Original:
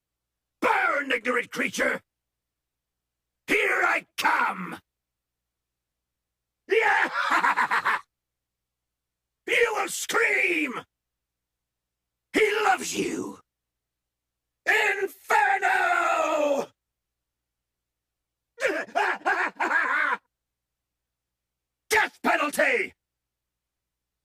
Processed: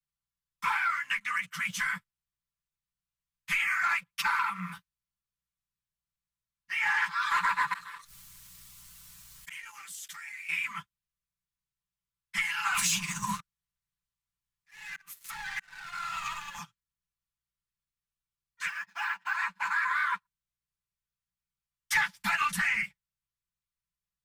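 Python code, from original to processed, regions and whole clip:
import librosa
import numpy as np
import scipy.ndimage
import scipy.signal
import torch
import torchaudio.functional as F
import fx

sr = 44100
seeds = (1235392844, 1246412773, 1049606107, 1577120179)

y = fx.chain(x, sr, fx.high_shelf(hz=4000.0, db=11.0),
    fx.gate_flip(shuts_db=-21.0, range_db=-32),
    fx.env_flatten(amount_pct=70), at=(7.73, 10.49))
y = fx.chain(y, sr, fx.leveller(passes=3),
    fx.over_compress(threshold_db=-26.0, ratio=-1.0),
    fx.auto_swell(attack_ms=687.0), at=(12.74, 16.59))
y = fx.chain(y, sr, fx.highpass(hz=670.0, slope=6),
    fx.high_shelf(hz=4200.0, db=-4.5),
    fx.resample_linear(factor=2), at=(18.67, 19.35))
y = fx.chain(y, sr, fx.low_shelf(hz=420.0, db=9.5),
    fx.band_squash(depth_pct=100), at=(21.95, 22.83))
y = scipy.signal.sosfilt(scipy.signal.ellip(3, 1.0, 40, [180.0, 1000.0], 'bandstop', fs=sr, output='sos'), y)
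y = y + 0.72 * np.pad(y, (int(5.9 * sr / 1000.0), 0))[:len(y)]
y = fx.leveller(y, sr, passes=1)
y = y * 10.0 ** (-8.5 / 20.0)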